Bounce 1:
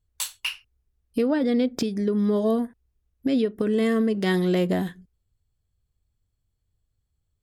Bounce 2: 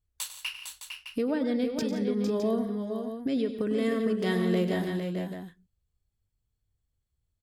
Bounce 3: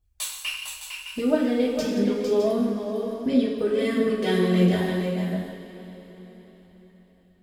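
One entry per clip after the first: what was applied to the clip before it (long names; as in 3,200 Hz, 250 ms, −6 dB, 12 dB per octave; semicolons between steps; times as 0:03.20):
multi-tap delay 99/140/172/455/483/611 ms −12.5/−15/−15/−6.5/−16/−9.5 dB; level −6 dB
phase shifter 1.5 Hz, delay 2.6 ms, feedback 51%; coupled-rooms reverb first 0.47 s, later 4.6 s, from −17 dB, DRR −3 dB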